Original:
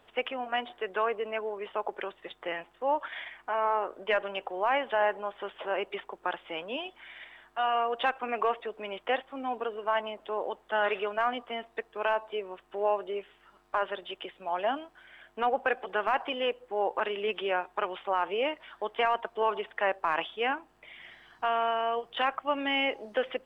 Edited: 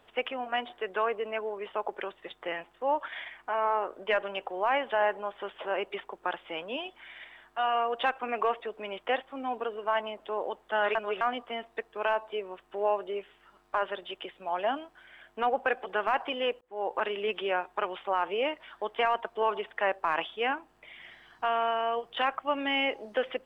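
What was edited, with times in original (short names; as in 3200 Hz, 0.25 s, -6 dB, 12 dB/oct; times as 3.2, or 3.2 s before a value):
10.95–11.21 reverse
16.61–16.95 fade in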